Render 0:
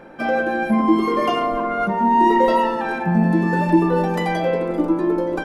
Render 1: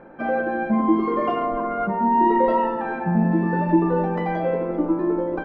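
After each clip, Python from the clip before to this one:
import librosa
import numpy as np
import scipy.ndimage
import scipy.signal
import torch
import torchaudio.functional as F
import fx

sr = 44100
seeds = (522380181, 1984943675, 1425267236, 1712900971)

y = scipy.signal.sosfilt(scipy.signal.butter(2, 1700.0, 'lowpass', fs=sr, output='sos'), x)
y = y * librosa.db_to_amplitude(-2.5)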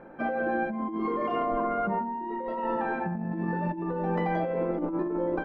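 y = fx.over_compress(x, sr, threshold_db=-24.0, ratio=-1.0)
y = y * librosa.db_to_amplitude(-5.5)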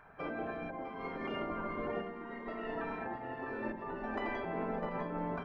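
y = fx.spec_gate(x, sr, threshold_db=-10, keep='weak')
y = fx.echo_split(y, sr, split_hz=980.0, low_ms=81, high_ms=653, feedback_pct=52, wet_db=-8.5)
y = y * librosa.db_to_amplitude(-1.5)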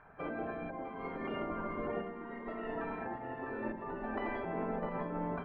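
y = fx.air_absorb(x, sr, metres=290.0)
y = y * librosa.db_to_amplitude(1.0)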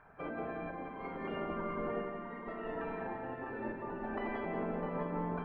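y = fx.echo_feedback(x, sr, ms=178, feedback_pct=44, wet_db=-6.5)
y = y * librosa.db_to_amplitude(-1.5)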